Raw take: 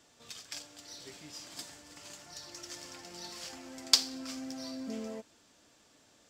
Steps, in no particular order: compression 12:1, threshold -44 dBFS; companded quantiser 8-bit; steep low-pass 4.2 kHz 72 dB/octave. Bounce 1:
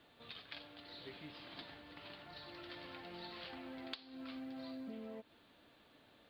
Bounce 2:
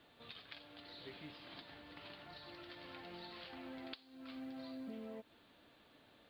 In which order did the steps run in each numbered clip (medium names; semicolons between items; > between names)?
steep low-pass > companded quantiser > compression; compression > steep low-pass > companded quantiser